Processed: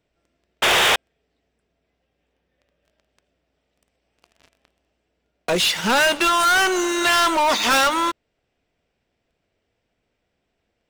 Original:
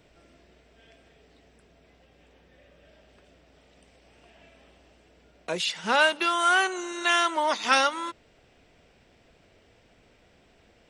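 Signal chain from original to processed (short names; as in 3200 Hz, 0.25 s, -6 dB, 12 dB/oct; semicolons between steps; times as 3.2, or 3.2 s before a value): painted sound noise, 0.62–0.96, 350–3800 Hz -21 dBFS; sample leveller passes 5; gain -4.5 dB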